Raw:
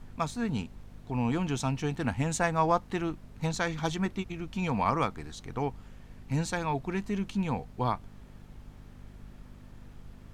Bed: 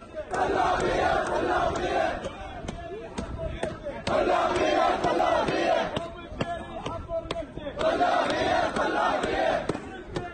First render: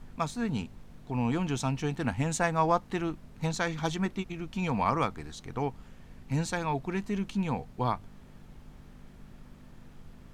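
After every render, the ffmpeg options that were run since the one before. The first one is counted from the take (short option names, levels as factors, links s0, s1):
-af "bandreject=f=50:t=h:w=4,bandreject=f=100:t=h:w=4"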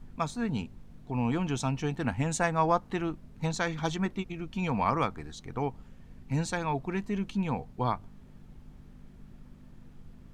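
-af "afftdn=nr=6:nf=-52"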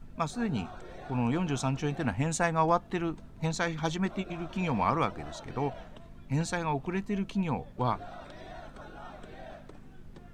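-filter_complex "[1:a]volume=0.0794[s0];[0:a][s0]amix=inputs=2:normalize=0"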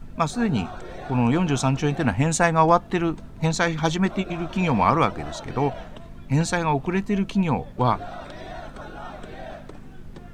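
-af "volume=2.66"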